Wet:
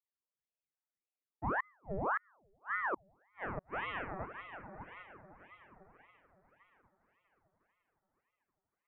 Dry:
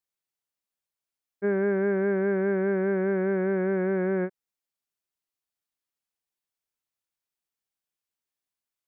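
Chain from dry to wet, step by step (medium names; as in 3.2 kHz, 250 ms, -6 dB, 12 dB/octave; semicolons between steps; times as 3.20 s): wah-wah 0.32 Hz 200–1100 Hz, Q 6.9; echo that smears into a reverb 716 ms, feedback 40%, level -10 dB; inverted gate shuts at -29 dBFS, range -40 dB; ring modulator with a swept carrier 920 Hz, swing 80%, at 1.8 Hz; trim +5.5 dB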